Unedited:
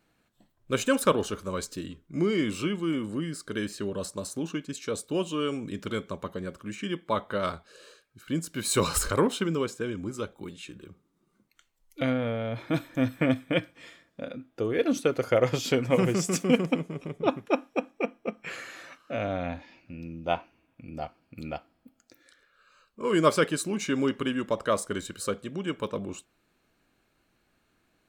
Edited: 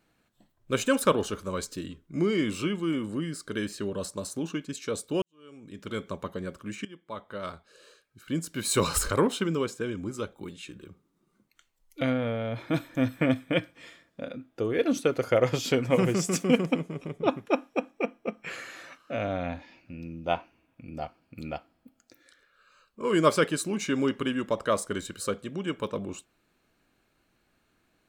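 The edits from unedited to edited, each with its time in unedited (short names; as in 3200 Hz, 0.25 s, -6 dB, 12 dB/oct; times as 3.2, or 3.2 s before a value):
5.22–6.05 fade in quadratic
6.85–8.46 fade in, from -18 dB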